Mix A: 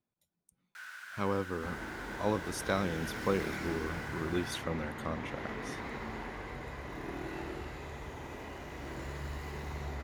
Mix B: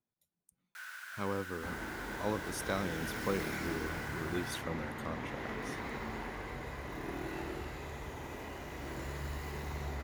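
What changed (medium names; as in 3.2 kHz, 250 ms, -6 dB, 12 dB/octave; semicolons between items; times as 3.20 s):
speech -4.0 dB; master: add treble shelf 11 kHz +9.5 dB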